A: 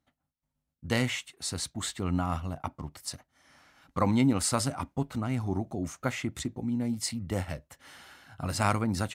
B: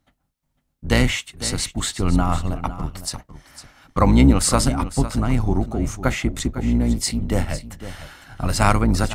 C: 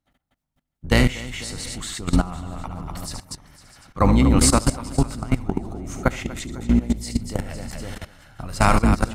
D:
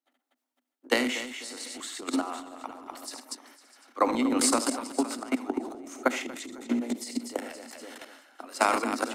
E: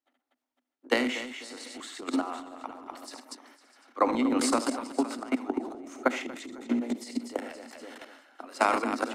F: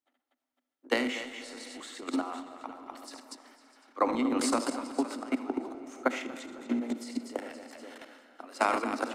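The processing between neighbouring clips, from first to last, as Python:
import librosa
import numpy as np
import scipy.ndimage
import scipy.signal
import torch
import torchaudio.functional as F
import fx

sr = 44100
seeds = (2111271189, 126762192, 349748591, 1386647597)

y1 = fx.octave_divider(x, sr, octaves=2, level_db=0.0)
y1 = y1 + 10.0 ** (-13.5 / 20.0) * np.pad(y1, (int(504 * sr / 1000.0), 0))[:len(y1)]
y1 = y1 * 10.0 ** (9.0 / 20.0)
y2 = fx.echo_multitap(y1, sr, ms=(72, 122, 241, 650), db=(-10.0, -18.5, -8.5, -19.5))
y2 = fx.level_steps(y2, sr, step_db=17)
y2 = y2 * 10.0 ** (2.5 / 20.0)
y3 = scipy.signal.sosfilt(scipy.signal.butter(16, 240.0, 'highpass', fs=sr, output='sos'), y2)
y3 = fx.transient(y3, sr, attack_db=6, sustain_db=10)
y3 = y3 * 10.0 ** (-8.0 / 20.0)
y4 = fx.high_shelf(y3, sr, hz=5700.0, db=-10.5)
y5 = fx.rev_freeverb(y4, sr, rt60_s=3.7, hf_ratio=0.7, predelay_ms=35, drr_db=14.0)
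y5 = y5 * 10.0 ** (-2.5 / 20.0)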